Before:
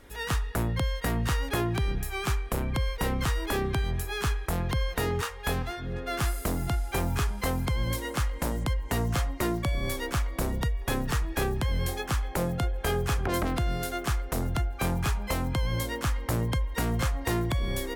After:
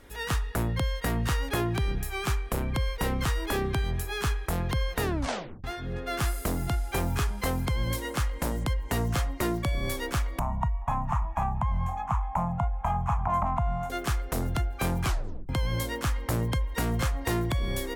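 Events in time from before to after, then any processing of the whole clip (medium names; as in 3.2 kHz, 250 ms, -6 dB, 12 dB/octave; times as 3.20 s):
5.02 s: tape stop 0.62 s
10.39–13.90 s: FFT filter 200 Hz 0 dB, 450 Hz -30 dB, 650 Hz +3 dB, 1 kHz +12 dB, 1.6 kHz -11 dB, 2.3 kHz -8 dB, 4.7 kHz -29 dB, 6.7 kHz -13 dB, 9.6 kHz -23 dB
15.04 s: tape stop 0.45 s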